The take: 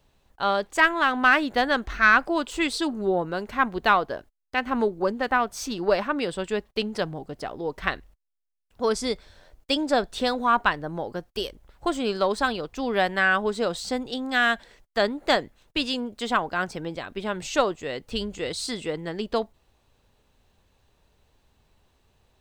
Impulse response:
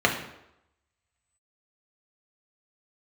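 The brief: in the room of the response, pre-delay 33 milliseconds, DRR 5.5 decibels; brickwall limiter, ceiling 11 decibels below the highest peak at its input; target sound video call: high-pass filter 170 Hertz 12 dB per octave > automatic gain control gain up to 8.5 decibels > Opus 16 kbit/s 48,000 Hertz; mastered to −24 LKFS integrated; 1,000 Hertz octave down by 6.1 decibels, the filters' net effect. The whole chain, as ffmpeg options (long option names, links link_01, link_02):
-filter_complex "[0:a]equalizer=frequency=1000:width_type=o:gain=-8.5,alimiter=limit=-19dB:level=0:latency=1,asplit=2[link_01][link_02];[1:a]atrim=start_sample=2205,adelay=33[link_03];[link_02][link_03]afir=irnorm=-1:irlink=0,volume=-22.5dB[link_04];[link_01][link_04]amix=inputs=2:normalize=0,highpass=170,dynaudnorm=maxgain=8.5dB,volume=2.5dB" -ar 48000 -c:a libopus -b:a 16k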